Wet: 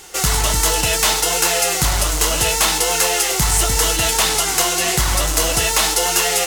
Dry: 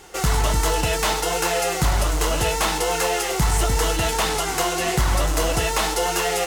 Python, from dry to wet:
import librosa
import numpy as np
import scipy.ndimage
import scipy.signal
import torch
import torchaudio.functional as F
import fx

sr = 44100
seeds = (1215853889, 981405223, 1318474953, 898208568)

y = fx.high_shelf(x, sr, hz=2400.0, db=11.0)